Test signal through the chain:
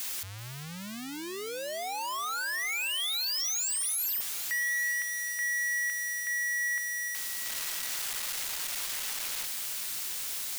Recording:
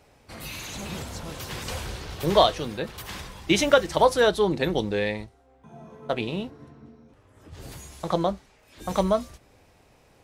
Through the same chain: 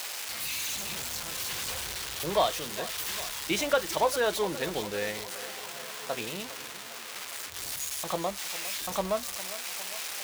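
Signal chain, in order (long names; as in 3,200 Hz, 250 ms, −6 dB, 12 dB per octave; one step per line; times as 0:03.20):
spike at every zero crossing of −12 dBFS
mid-hump overdrive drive 8 dB, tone 2,600 Hz, clips at −5 dBFS
on a send: feedback echo with a high-pass in the loop 405 ms, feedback 65%, high-pass 150 Hz, level −15 dB
on the sum: level −7.5 dB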